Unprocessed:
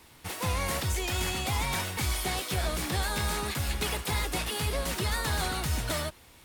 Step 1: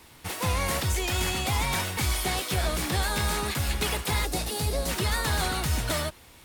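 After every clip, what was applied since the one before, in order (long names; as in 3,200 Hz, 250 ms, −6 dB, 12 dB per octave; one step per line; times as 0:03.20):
gain on a spectral selection 0:04.26–0:04.88, 900–3,600 Hz −7 dB
level +3 dB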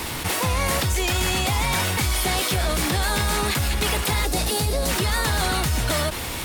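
envelope flattener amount 70%
level +2.5 dB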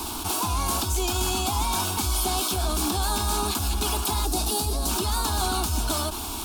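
phaser with its sweep stopped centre 520 Hz, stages 6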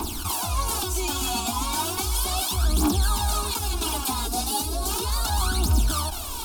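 phase shifter 0.35 Hz, delay 4.4 ms, feedback 69%
level −3 dB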